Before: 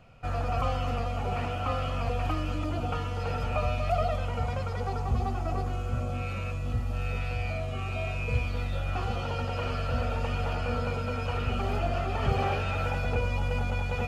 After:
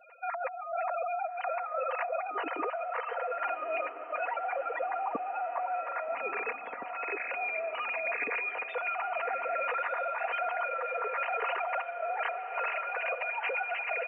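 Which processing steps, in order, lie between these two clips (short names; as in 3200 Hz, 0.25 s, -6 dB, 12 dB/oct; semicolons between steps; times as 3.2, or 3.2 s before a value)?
sine-wave speech; LPF 2600 Hz 24 dB/oct; spectral gate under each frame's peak -20 dB strong; low shelf 400 Hz -6 dB; comb 4.2 ms, depth 68%; negative-ratio compressor -33 dBFS, ratio -1; diffused feedback echo 1.259 s, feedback 48%, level -11 dB; gain -2 dB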